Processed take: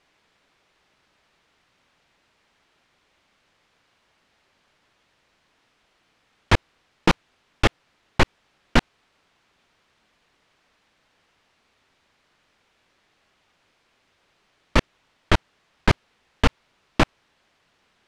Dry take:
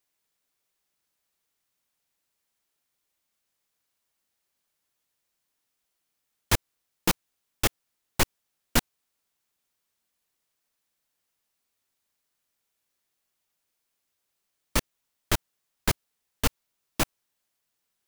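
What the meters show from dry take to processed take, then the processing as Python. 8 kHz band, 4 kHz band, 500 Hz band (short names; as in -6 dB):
-7.5 dB, +3.5 dB, +8.0 dB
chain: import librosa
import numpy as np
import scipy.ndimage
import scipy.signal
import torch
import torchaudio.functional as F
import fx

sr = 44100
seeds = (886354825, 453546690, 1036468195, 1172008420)

p1 = fx.over_compress(x, sr, threshold_db=-29.0, ratio=-0.5)
p2 = x + (p1 * librosa.db_to_amplitude(1.5))
p3 = scipy.signal.sosfilt(scipy.signal.butter(2, 3100.0, 'lowpass', fs=sr, output='sos'), p2)
y = p3 * librosa.db_to_amplitude(6.0)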